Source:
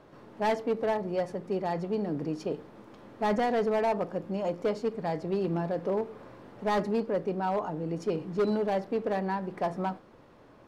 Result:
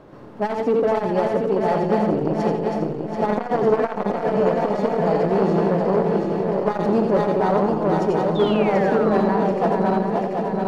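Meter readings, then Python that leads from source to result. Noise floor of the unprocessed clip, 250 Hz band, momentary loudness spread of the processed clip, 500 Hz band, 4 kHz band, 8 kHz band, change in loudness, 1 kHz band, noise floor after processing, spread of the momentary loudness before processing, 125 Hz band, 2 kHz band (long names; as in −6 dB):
−55 dBFS, +11.5 dB, 5 LU, +11.0 dB, +7.5 dB, can't be measured, +10.5 dB, +10.0 dB, −29 dBFS, 8 LU, +11.5 dB, +8.5 dB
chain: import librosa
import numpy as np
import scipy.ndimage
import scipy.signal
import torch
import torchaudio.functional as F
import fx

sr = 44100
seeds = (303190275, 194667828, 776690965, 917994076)

y = fx.reverse_delay_fb(x, sr, ms=367, feedback_pct=80, wet_db=-4)
y = fx.spec_paint(y, sr, seeds[0], shape='fall', start_s=8.35, length_s=1.46, low_hz=360.0, high_hz=3700.0, level_db=-39.0)
y = fx.tilt_shelf(y, sr, db=3.5, hz=1200.0)
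y = fx.echo_feedback(y, sr, ms=85, feedback_pct=30, wet_db=-6.0)
y = fx.transformer_sat(y, sr, knee_hz=500.0)
y = F.gain(torch.from_numpy(y), 6.5).numpy()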